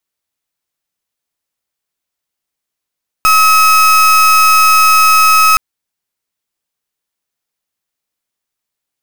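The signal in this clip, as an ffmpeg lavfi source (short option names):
-f lavfi -i "aevalsrc='0.422*(2*lt(mod(1280*t,1),0.35)-1)':d=2.32:s=44100"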